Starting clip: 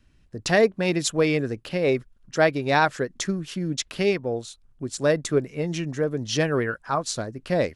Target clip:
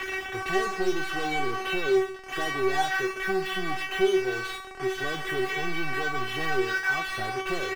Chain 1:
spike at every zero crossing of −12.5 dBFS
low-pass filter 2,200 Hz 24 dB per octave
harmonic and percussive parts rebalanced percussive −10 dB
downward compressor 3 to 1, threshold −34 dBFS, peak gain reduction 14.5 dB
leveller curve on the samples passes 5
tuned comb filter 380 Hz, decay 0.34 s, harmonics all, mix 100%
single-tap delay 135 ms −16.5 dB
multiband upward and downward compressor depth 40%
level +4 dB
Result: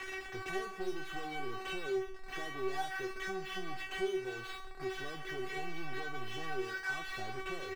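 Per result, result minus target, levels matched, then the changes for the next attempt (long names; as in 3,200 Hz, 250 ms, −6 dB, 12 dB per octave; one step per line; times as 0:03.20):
downward compressor: peak gain reduction +14.5 dB; spike at every zero crossing: distortion −7 dB
remove: downward compressor 3 to 1, threshold −34 dBFS, peak gain reduction 14.5 dB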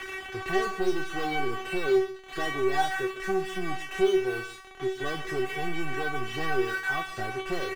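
spike at every zero crossing: distortion −7 dB
change: spike at every zero crossing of −5 dBFS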